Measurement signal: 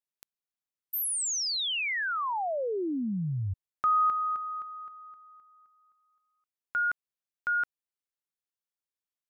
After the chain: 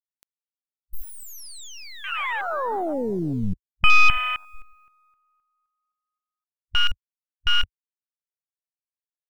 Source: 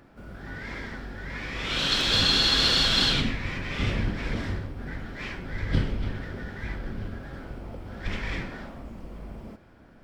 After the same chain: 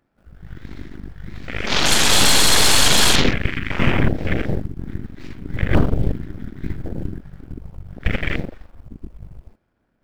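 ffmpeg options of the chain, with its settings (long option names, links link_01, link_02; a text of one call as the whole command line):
ffmpeg -i in.wav -af "acrusher=bits=7:mode=log:mix=0:aa=0.000001,aeval=exprs='0.316*(cos(1*acos(clip(val(0)/0.316,-1,1)))-cos(1*PI/2))+0.0282*(cos(3*acos(clip(val(0)/0.316,-1,1)))-cos(3*PI/2))+0.158*(cos(8*acos(clip(val(0)/0.316,-1,1)))-cos(8*PI/2))':channel_layout=same,afwtdn=0.0501,volume=3.5dB" out.wav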